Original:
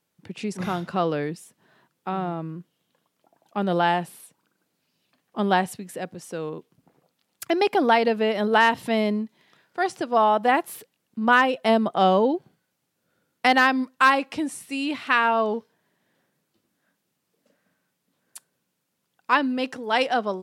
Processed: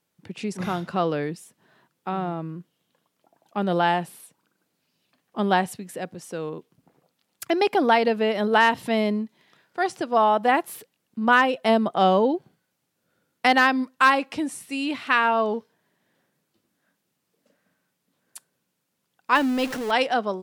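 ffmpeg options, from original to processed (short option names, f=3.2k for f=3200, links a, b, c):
-filter_complex "[0:a]asettb=1/sr,asplit=3[a][b][c];[a]atrim=end=19.354[d];[b]atrim=start=19.35:end=19.91,asetpts=PTS-STARTPTS,afade=t=in:d=0.004:c=qsin,afade=t=out:st=0.556:d=0.004:c=qsin,aeval=exprs='val(0)+0.5*0.0355*sgn(val(0))':c=same[e];[c]atrim=start=19.906[f];[d][e]acrossfade=d=0.004:c1=hsin:c2=qsin[g];[g][f]acrossfade=d=0.004:c1=qsin:c2=hsin"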